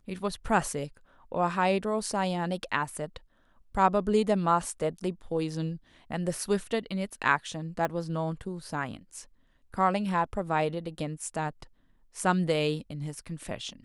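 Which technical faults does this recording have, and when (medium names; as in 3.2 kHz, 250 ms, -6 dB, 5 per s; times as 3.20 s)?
7.85 s: pop -16 dBFS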